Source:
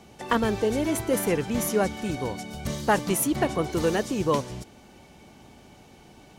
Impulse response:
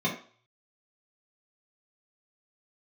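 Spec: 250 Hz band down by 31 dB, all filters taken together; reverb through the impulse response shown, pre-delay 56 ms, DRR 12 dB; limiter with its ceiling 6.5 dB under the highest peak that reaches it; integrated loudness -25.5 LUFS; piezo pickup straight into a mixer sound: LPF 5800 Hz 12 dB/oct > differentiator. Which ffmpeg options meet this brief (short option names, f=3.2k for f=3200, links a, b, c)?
-filter_complex "[0:a]equalizer=f=250:t=o:g=-3.5,alimiter=limit=-17.5dB:level=0:latency=1,asplit=2[a][b];[1:a]atrim=start_sample=2205,adelay=56[c];[b][c]afir=irnorm=-1:irlink=0,volume=-22dB[d];[a][d]amix=inputs=2:normalize=0,lowpass=5.8k,aderivative,volume=18dB"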